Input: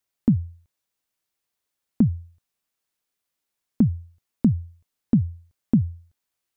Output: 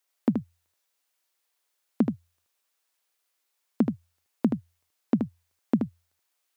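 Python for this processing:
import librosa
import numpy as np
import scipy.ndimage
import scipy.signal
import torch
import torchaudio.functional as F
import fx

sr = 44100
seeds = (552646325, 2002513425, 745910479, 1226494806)

p1 = scipy.signal.sosfilt(scipy.signal.butter(2, 470.0, 'highpass', fs=sr, output='sos'), x)
p2 = p1 + fx.echo_single(p1, sr, ms=77, db=-4.0, dry=0)
p3 = fx.upward_expand(p2, sr, threshold_db=-36.0, expansion=1.5)
y = F.gain(torch.from_numpy(p3), 8.5).numpy()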